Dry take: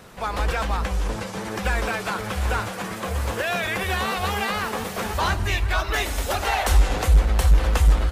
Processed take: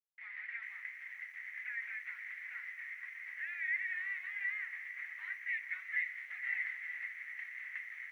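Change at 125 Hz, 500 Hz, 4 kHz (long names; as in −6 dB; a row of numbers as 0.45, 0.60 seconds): below −40 dB, below −40 dB, below −30 dB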